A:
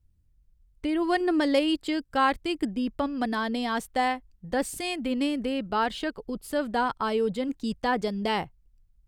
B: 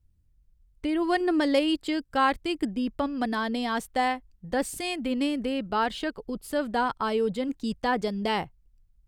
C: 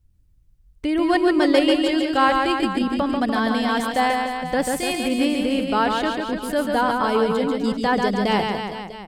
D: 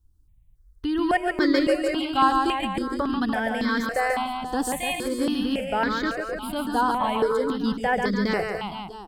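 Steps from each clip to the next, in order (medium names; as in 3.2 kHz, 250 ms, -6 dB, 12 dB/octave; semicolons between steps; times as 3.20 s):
no audible change
reverse bouncing-ball echo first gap 140 ms, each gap 1.1×, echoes 5; trim +5 dB
stepped phaser 3.6 Hz 580–2800 Hz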